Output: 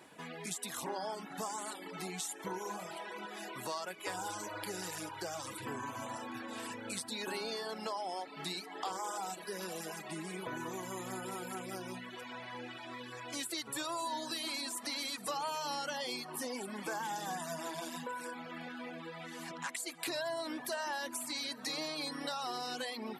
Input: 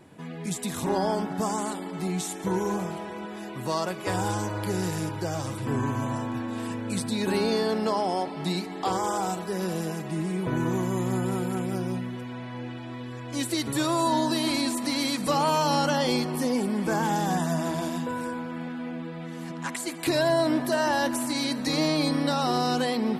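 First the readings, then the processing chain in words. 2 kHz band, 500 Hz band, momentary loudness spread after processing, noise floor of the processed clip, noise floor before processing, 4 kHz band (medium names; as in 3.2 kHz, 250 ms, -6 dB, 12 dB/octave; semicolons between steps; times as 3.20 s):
-8.0 dB, -14.0 dB, 7 LU, -49 dBFS, -37 dBFS, -8.0 dB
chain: high-pass 890 Hz 6 dB/octave; reverb removal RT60 0.92 s; compression 2.5:1, threshold -43 dBFS, peak gain reduction 12.5 dB; trim +2.5 dB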